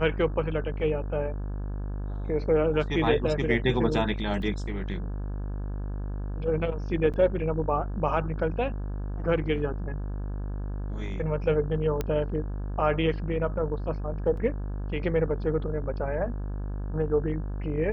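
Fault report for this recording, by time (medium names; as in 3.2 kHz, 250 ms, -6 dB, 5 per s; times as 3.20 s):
buzz 50 Hz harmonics 34 -32 dBFS
4.42 s: dropout 2.3 ms
7.13–7.14 s: dropout 7.7 ms
12.01 s: pop -15 dBFS
14.37 s: dropout 3.9 ms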